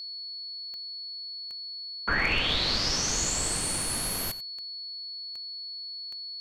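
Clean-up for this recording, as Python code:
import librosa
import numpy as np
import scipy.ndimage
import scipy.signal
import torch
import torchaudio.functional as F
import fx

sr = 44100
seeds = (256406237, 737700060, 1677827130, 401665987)

y = fx.fix_declip(x, sr, threshold_db=-16.5)
y = fx.fix_declick_ar(y, sr, threshold=10.0)
y = fx.notch(y, sr, hz=4400.0, q=30.0)
y = fx.fix_echo_inverse(y, sr, delay_ms=90, level_db=-17.0)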